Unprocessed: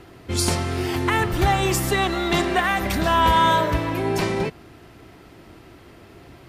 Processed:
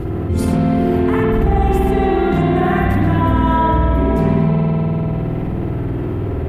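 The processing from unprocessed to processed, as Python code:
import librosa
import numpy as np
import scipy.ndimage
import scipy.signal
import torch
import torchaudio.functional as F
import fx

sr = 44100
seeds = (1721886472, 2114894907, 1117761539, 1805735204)

y = fx.curve_eq(x, sr, hz=(150.0, 5500.0, 13000.0), db=(0, -26, -16))
y = fx.rev_spring(y, sr, rt60_s=2.1, pass_ms=(50,), chirp_ms=65, drr_db=-8.5)
y = fx.env_flatten(y, sr, amount_pct=70)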